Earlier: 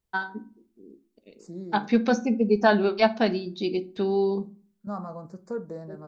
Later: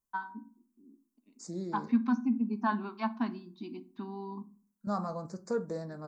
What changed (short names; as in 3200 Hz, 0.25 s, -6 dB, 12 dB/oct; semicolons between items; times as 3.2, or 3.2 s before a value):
first voice: add double band-pass 510 Hz, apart 2 oct; master: add high shelf 2500 Hz +11 dB